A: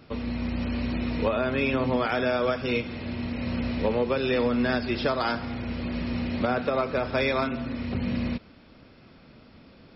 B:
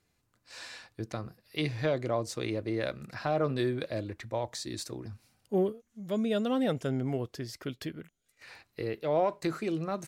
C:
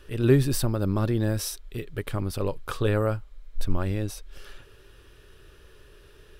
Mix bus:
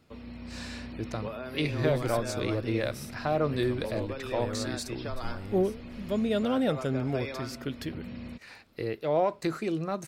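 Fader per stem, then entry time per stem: -12.5, +1.5, -13.0 dB; 0.00, 0.00, 1.55 s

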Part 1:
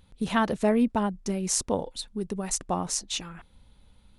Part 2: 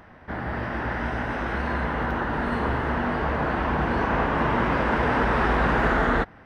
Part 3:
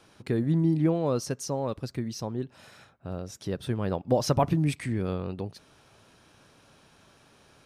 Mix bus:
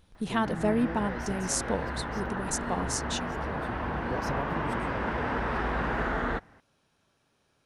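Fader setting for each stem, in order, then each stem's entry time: -3.5, -8.0, -13.0 dB; 0.00, 0.15, 0.00 s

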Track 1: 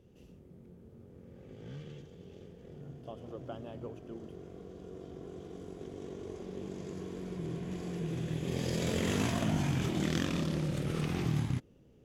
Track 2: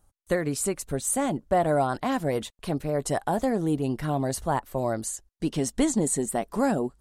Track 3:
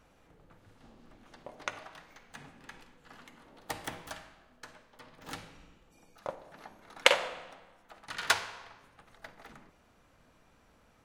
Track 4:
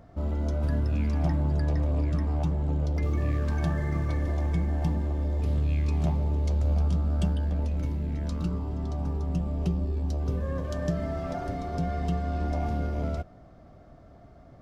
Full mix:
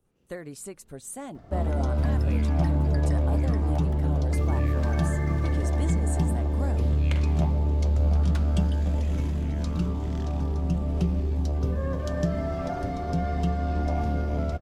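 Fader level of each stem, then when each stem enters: -13.0, -12.0, -17.0, +2.5 dB; 0.00, 0.00, 0.05, 1.35 s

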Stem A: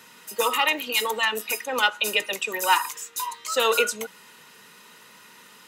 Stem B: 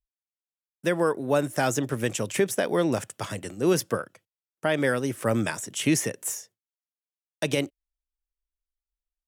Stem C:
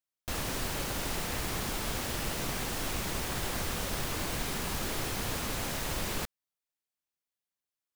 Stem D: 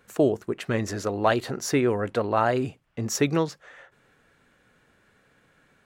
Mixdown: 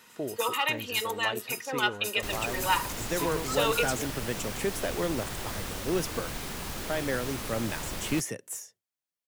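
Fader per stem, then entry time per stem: -6.0, -7.0, -2.5, -14.0 dB; 0.00, 2.25, 1.95, 0.00 s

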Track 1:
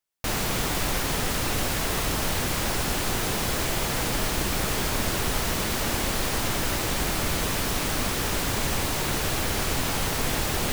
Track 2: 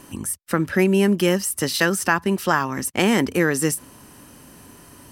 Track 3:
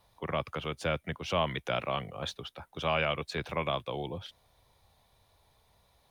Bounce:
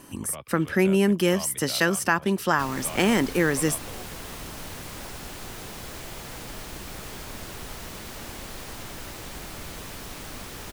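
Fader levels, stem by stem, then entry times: -12.0, -3.0, -9.0 dB; 2.35, 0.00, 0.00 s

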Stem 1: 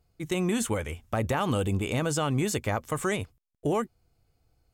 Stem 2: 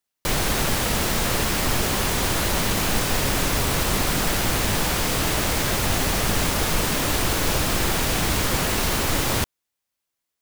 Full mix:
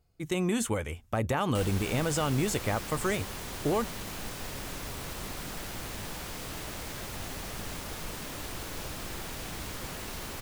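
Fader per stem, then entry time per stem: -1.5, -16.5 dB; 0.00, 1.30 s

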